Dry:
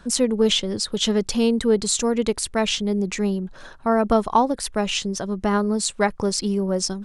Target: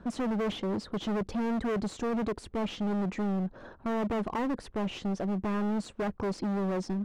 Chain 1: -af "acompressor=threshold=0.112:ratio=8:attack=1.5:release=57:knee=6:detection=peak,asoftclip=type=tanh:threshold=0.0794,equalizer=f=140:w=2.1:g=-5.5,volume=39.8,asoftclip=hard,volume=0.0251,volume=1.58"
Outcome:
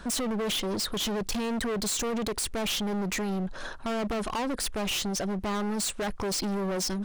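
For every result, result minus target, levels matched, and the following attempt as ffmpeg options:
compression: peak gain reduction +9 dB; 250 Hz band -3.0 dB
-af "asoftclip=type=tanh:threshold=0.0794,equalizer=f=140:w=2.1:g=-5.5,volume=39.8,asoftclip=hard,volume=0.0251,volume=1.58"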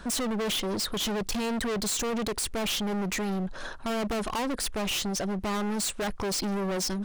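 250 Hz band -3.5 dB
-af "asoftclip=type=tanh:threshold=0.0794,bandpass=f=200:t=q:w=0.53:csg=0,equalizer=f=140:w=2.1:g=-5.5,volume=39.8,asoftclip=hard,volume=0.0251,volume=1.58"

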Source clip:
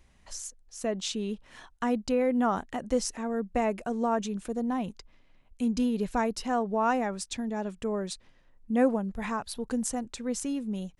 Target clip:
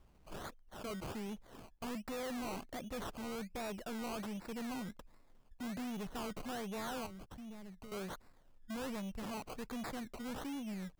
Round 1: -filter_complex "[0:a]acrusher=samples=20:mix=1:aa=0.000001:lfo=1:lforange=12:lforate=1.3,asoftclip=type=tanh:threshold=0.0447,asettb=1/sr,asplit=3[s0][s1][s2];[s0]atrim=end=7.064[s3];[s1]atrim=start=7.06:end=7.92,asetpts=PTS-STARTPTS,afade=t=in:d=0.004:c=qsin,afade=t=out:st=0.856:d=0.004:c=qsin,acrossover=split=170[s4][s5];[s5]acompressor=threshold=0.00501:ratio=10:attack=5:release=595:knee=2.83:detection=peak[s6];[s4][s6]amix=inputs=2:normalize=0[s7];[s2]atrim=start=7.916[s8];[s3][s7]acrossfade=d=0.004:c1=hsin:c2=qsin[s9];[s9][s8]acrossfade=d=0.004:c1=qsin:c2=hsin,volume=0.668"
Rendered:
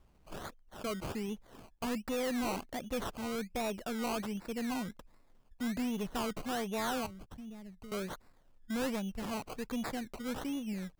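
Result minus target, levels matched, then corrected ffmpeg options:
saturation: distortion -5 dB
-filter_complex "[0:a]acrusher=samples=20:mix=1:aa=0.000001:lfo=1:lforange=12:lforate=1.3,asoftclip=type=tanh:threshold=0.0158,asettb=1/sr,asplit=3[s0][s1][s2];[s0]atrim=end=7.064[s3];[s1]atrim=start=7.06:end=7.92,asetpts=PTS-STARTPTS,afade=t=in:d=0.004:c=qsin,afade=t=out:st=0.856:d=0.004:c=qsin,acrossover=split=170[s4][s5];[s5]acompressor=threshold=0.00501:ratio=10:attack=5:release=595:knee=2.83:detection=peak[s6];[s4][s6]amix=inputs=2:normalize=0[s7];[s2]atrim=start=7.916[s8];[s3][s7]acrossfade=d=0.004:c1=hsin:c2=qsin[s9];[s9][s8]acrossfade=d=0.004:c1=qsin:c2=hsin,volume=0.668"

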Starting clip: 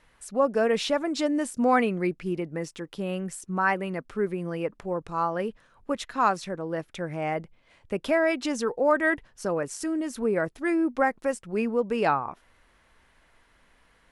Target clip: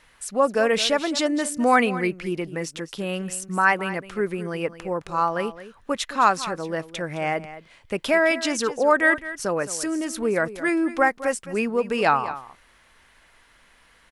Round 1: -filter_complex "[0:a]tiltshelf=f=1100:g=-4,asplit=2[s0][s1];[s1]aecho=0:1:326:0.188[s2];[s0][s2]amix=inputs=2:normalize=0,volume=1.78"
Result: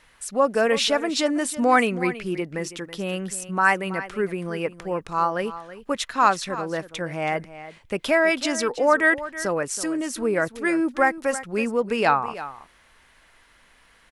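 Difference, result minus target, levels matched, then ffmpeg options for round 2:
echo 112 ms late
-filter_complex "[0:a]tiltshelf=f=1100:g=-4,asplit=2[s0][s1];[s1]aecho=0:1:214:0.188[s2];[s0][s2]amix=inputs=2:normalize=0,volume=1.78"

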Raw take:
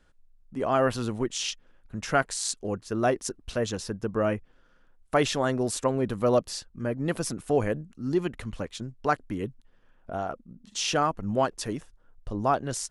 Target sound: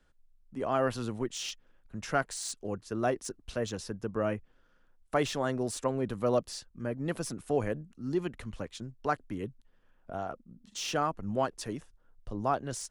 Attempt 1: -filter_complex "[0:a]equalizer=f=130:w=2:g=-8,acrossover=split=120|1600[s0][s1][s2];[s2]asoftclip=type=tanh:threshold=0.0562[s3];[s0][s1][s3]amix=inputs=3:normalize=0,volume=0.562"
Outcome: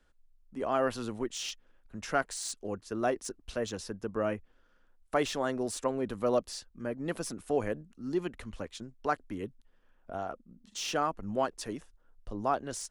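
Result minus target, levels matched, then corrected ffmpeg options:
125 Hz band -5.5 dB
-filter_complex "[0:a]acrossover=split=120|1600[s0][s1][s2];[s2]asoftclip=type=tanh:threshold=0.0562[s3];[s0][s1][s3]amix=inputs=3:normalize=0,volume=0.562"

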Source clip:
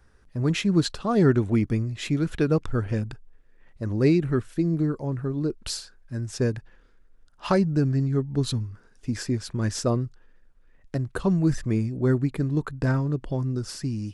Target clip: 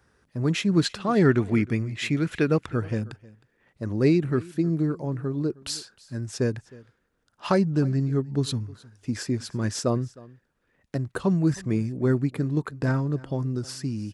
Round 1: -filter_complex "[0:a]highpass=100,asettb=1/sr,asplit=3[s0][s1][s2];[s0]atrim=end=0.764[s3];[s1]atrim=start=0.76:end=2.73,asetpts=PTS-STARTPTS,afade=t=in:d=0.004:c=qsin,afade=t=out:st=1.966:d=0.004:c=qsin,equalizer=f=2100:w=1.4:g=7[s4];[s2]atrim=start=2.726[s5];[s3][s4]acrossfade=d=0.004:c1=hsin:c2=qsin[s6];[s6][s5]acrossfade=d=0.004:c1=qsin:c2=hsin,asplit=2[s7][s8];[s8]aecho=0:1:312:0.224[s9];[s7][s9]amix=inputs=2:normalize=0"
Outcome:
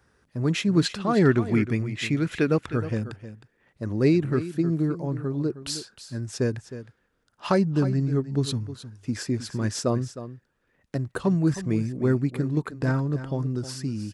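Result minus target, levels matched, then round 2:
echo-to-direct +9 dB
-filter_complex "[0:a]highpass=100,asettb=1/sr,asplit=3[s0][s1][s2];[s0]atrim=end=0.764[s3];[s1]atrim=start=0.76:end=2.73,asetpts=PTS-STARTPTS,afade=t=in:d=0.004:c=qsin,afade=t=out:st=1.966:d=0.004:c=qsin,equalizer=f=2100:w=1.4:g=7[s4];[s2]atrim=start=2.726[s5];[s3][s4]acrossfade=d=0.004:c1=hsin:c2=qsin[s6];[s6][s5]acrossfade=d=0.004:c1=qsin:c2=hsin,asplit=2[s7][s8];[s8]aecho=0:1:312:0.0794[s9];[s7][s9]amix=inputs=2:normalize=0"

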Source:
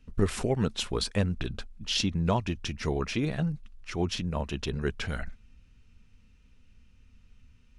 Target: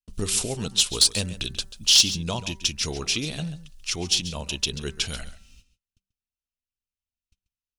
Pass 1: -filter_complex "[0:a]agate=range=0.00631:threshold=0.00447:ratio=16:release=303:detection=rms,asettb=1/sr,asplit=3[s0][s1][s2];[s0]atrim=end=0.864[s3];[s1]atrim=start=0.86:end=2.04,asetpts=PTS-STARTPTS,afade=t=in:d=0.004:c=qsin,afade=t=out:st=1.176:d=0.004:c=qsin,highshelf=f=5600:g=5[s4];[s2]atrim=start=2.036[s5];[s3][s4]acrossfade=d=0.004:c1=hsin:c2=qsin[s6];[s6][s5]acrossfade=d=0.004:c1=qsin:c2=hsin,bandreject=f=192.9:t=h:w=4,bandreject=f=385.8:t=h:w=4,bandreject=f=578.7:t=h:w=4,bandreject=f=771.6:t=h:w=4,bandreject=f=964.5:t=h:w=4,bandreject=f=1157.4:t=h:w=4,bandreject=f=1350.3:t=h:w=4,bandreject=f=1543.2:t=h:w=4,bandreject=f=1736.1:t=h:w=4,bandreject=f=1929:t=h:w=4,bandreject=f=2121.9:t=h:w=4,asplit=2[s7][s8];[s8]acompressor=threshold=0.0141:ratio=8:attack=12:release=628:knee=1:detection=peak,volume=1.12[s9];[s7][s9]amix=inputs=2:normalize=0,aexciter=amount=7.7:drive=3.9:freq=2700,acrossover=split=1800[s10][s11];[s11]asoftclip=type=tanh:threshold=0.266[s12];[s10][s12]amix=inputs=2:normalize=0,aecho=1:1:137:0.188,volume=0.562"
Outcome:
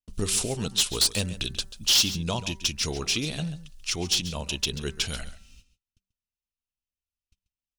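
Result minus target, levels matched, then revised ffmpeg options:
saturation: distortion +10 dB
-filter_complex "[0:a]agate=range=0.00631:threshold=0.00447:ratio=16:release=303:detection=rms,asettb=1/sr,asplit=3[s0][s1][s2];[s0]atrim=end=0.864[s3];[s1]atrim=start=0.86:end=2.04,asetpts=PTS-STARTPTS,afade=t=in:d=0.004:c=qsin,afade=t=out:st=1.176:d=0.004:c=qsin,highshelf=f=5600:g=5[s4];[s2]atrim=start=2.036[s5];[s3][s4]acrossfade=d=0.004:c1=hsin:c2=qsin[s6];[s6][s5]acrossfade=d=0.004:c1=qsin:c2=hsin,bandreject=f=192.9:t=h:w=4,bandreject=f=385.8:t=h:w=4,bandreject=f=578.7:t=h:w=4,bandreject=f=771.6:t=h:w=4,bandreject=f=964.5:t=h:w=4,bandreject=f=1157.4:t=h:w=4,bandreject=f=1350.3:t=h:w=4,bandreject=f=1543.2:t=h:w=4,bandreject=f=1736.1:t=h:w=4,bandreject=f=1929:t=h:w=4,bandreject=f=2121.9:t=h:w=4,asplit=2[s7][s8];[s8]acompressor=threshold=0.0141:ratio=8:attack=12:release=628:knee=1:detection=peak,volume=1.12[s9];[s7][s9]amix=inputs=2:normalize=0,aexciter=amount=7.7:drive=3.9:freq=2700,acrossover=split=1800[s10][s11];[s11]asoftclip=type=tanh:threshold=0.794[s12];[s10][s12]amix=inputs=2:normalize=0,aecho=1:1:137:0.188,volume=0.562"

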